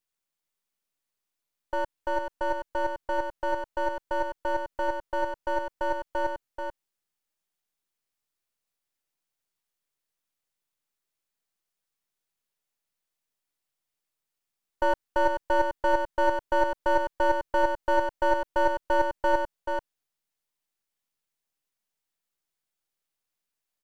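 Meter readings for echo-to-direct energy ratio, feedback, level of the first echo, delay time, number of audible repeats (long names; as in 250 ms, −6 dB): −5.5 dB, repeats not evenly spaced, −5.5 dB, 434 ms, 1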